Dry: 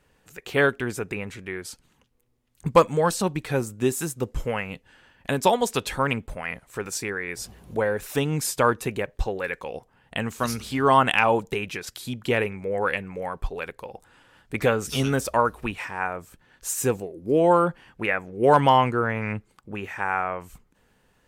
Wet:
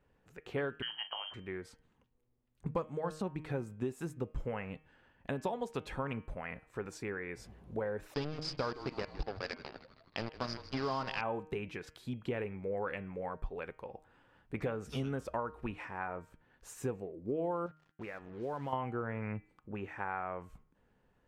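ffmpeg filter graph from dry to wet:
ffmpeg -i in.wav -filter_complex "[0:a]asettb=1/sr,asplit=3[link_01][link_02][link_03];[link_01]atrim=end=0.824[link_04];[link_02]atrim=start=0.82:end=1.34,asetpts=PTS-STARTPTS,afade=type=in:duration=0.004:curve=qsin,afade=type=out:start_time=0.516:duration=0.004:curve=qsin,lowshelf=frequency=440:gain=6.5,lowpass=frequency=2800:width_type=q:width=0.5098,lowpass=frequency=2800:width_type=q:width=0.6013,lowpass=frequency=2800:width_type=q:width=0.9,lowpass=frequency=2800:width_type=q:width=2.563,afreqshift=-3300,asplit=2[link_05][link_06];[link_06]adelay=41,volume=-13dB[link_07];[link_05][link_07]amix=inputs=2:normalize=0,atrim=end_sample=22932[link_08];[link_03]atrim=start=1.336[link_09];[link_04][link_08]acrossfade=duration=0.004:curve1=hsin:curve2=qsin[link_10];[link_10][link_09]acrossfade=duration=0.004:curve1=qsin:curve2=hsin,asettb=1/sr,asplit=3[link_11][link_12][link_13];[link_11]atrim=end=8.144[link_14];[link_12]atrim=start=8.14:end=11.21,asetpts=PTS-STARTPTS,afade=type=in:duration=0.004:curve=qsin,afade=type=out:start_time=3.066:duration=0.004:curve=qsin,acrusher=bits=3:mix=0:aa=0.5,lowpass=frequency=4900:width_type=q:width=13,asplit=6[link_15][link_16][link_17][link_18][link_19][link_20];[link_16]adelay=158,afreqshift=-140,volume=-17dB[link_21];[link_17]adelay=316,afreqshift=-280,volume=-22dB[link_22];[link_18]adelay=474,afreqshift=-420,volume=-27.1dB[link_23];[link_19]adelay=632,afreqshift=-560,volume=-32.1dB[link_24];[link_20]adelay=790,afreqshift=-700,volume=-37.1dB[link_25];[link_15][link_21][link_22][link_23][link_24][link_25]amix=inputs=6:normalize=0,atrim=end_sample=135387[link_26];[link_13]atrim=start=11.206[link_27];[link_14][link_26]acrossfade=duration=0.004:curve1=hsin:curve2=qsin[link_28];[link_28][link_27]acrossfade=duration=0.004:curve1=qsin:curve2=hsin,asettb=1/sr,asplit=3[link_29][link_30][link_31];[link_29]atrim=end=17.664[link_32];[link_30]atrim=start=17.66:end=18.73,asetpts=PTS-STARTPTS,afade=type=in:duration=0.004:curve=qsin,afade=type=out:start_time=1.066:duration=0.004:curve=qsin,lowpass=11000,acompressor=threshold=-38dB:ratio=2:attack=3.2:release=140:knee=1:detection=peak,acrusher=bits=6:mix=0:aa=0.5[link_33];[link_31]atrim=start=18.726[link_34];[link_32][link_33]acrossfade=duration=0.004:curve1=hsin:curve2=qsin[link_35];[link_35][link_34]acrossfade=duration=0.004:curve1=qsin:curve2=hsin,lowpass=frequency=1200:poles=1,acompressor=threshold=-26dB:ratio=5,bandreject=frequency=155.2:width_type=h:width=4,bandreject=frequency=310.4:width_type=h:width=4,bandreject=frequency=465.6:width_type=h:width=4,bandreject=frequency=620.8:width_type=h:width=4,bandreject=frequency=776:width_type=h:width=4,bandreject=frequency=931.2:width_type=h:width=4,bandreject=frequency=1086.4:width_type=h:width=4,bandreject=frequency=1241.6:width_type=h:width=4,bandreject=frequency=1396.8:width_type=h:width=4,bandreject=frequency=1552:width_type=h:width=4,bandreject=frequency=1707.2:width_type=h:width=4,bandreject=frequency=1862.4:width_type=h:width=4,bandreject=frequency=2017.6:width_type=h:width=4,bandreject=frequency=2172.8:width_type=h:width=4,bandreject=frequency=2328:width_type=h:width=4,bandreject=frequency=2483.2:width_type=h:width=4,bandreject=frequency=2638.4:width_type=h:width=4,bandreject=frequency=2793.6:width_type=h:width=4,bandreject=frequency=2948.8:width_type=h:width=4,bandreject=frequency=3104:width_type=h:width=4,bandreject=frequency=3259.2:width_type=h:width=4,volume=-6.5dB" out.wav

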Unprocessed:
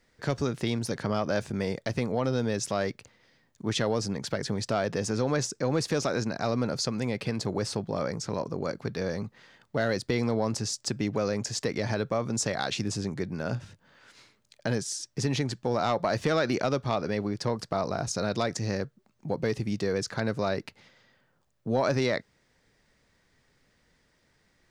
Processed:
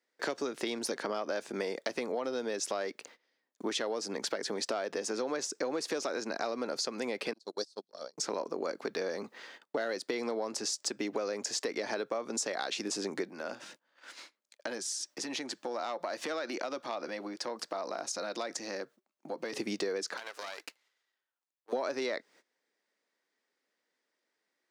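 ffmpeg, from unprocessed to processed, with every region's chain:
ffmpeg -i in.wav -filter_complex "[0:a]asettb=1/sr,asplit=3[link_01][link_02][link_03];[link_01]atrim=end=7.334[link_04];[link_02]atrim=start=7.33:end=8.18,asetpts=PTS-STARTPTS,afade=type=in:duration=0.004:curve=qsin,afade=type=out:start_time=0.846:duration=0.004:curve=qsin,agate=range=-45dB:threshold=-27dB:ratio=16:release=100:detection=peak,highshelf=frequency=3100:width_type=q:width=3:gain=10.5[link_05];[link_03]atrim=start=8.176[link_06];[link_04][link_05]acrossfade=duration=0.004:curve1=hsin:curve2=qsin[link_07];[link_07][link_06]acrossfade=duration=0.004:curve1=qsin:curve2=hsin,asettb=1/sr,asplit=3[link_08][link_09][link_10];[link_08]atrim=end=13.294[link_11];[link_09]atrim=start=13.29:end=19.53,asetpts=PTS-STARTPTS,afade=type=in:duration=0.004:curve=qsin,afade=type=out:start_time=6.236:duration=0.004:curve=qsin,equalizer=frequency=69:width_type=o:width=1.3:gain=-13.5,acompressor=threshold=-44dB:ratio=2:attack=3.2:release=140:knee=1:detection=peak,bandreject=frequency=420:width=5.6[link_12];[link_10]atrim=start=19.526[link_13];[link_11][link_12]acrossfade=duration=0.004:curve1=hsin:curve2=qsin[link_14];[link_14][link_13]acrossfade=duration=0.004:curve1=qsin:curve2=hsin,asettb=1/sr,asplit=3[link_15][link_16][link_17];[link_15]atrim=end=20.174[link_18];[link_16]atrim=start=20.17:end=21.73,asetpts=PTS-STARTPTS,afade=type=in:duration=0.004:curve=qsin,afade=type=out:start_time=1.556:duration=0.004:curve=qsin,highpass=940,aeval=exprs='max(val(0),0)':channel_layout=same,acompressor=threshold=-41dB:ratio=6:attack=3.2:release=140:knee=1:detection=peak[link_19];[link_17]atrim=start=21.726[link_20];[link_18][link_19]acrossfade=duration=0.004:curve1=hsin:curve2=qsin[link_21];[link_21][link_20]acrossfade=duration=0.004:curve1=qsin:curve2=hsin,agate=range=-20dB:threshold=-56dB:ratio=16:detection=peak,highpass=frequency=290:width=0.5412,highpass=frequency=290:width=1.3066,acompressor=threshold=-38dB:ratio=6,volume=6.5dB" out.wav

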